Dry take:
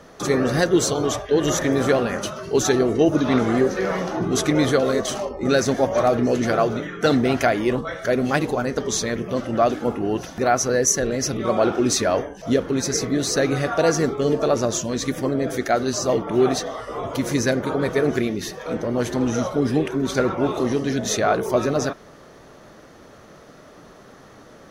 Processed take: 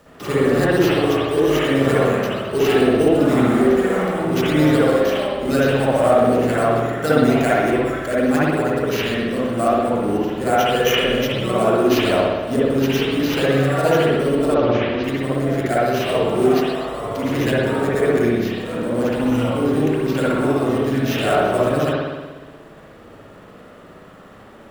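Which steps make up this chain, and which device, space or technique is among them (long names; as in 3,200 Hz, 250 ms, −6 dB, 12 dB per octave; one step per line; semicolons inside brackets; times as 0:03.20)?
early companding sampler (sample-rate reduction 8,900 Hz, jitter 0%; log-companded quantiser 6 bits)
0:14.54–0:15.04: Bessel low-pass filter 3,300 Hz, order 8
spring reverb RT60 1.3 s, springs 59 ms, chirp 75 ms, DRR −8.5 dB
level −6 dB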